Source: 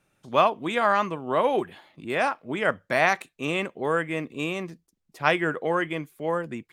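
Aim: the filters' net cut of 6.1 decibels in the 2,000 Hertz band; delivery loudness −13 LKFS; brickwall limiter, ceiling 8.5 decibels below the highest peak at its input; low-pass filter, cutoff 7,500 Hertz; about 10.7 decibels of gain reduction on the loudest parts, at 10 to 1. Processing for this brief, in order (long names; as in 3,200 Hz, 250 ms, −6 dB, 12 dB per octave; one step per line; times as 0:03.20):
low-pass filter 7,500 Hz
parametric band 2,000 Hz −8 dB
downward compressor 10 to 1, threshold −26 dBFS
level +22 dB
brickwall limiter −1.5 dBFS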